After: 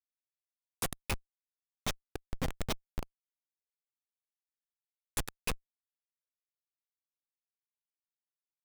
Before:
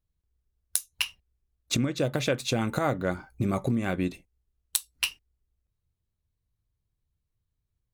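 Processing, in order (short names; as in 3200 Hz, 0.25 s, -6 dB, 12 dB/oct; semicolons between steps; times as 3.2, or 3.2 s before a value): pre-emphasis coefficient 0.9; speed mistake 48 kHz file played as 44.1 kHz; feedback echo 0.105 s, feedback 50%, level -19 dB; Schmitt trigger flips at -29.5 dBFS; gain +10 dB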